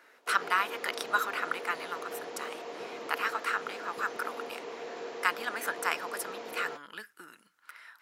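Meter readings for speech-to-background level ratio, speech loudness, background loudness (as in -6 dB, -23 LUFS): 8.0 dB, -33.5 LUFS, -41.5 LUFS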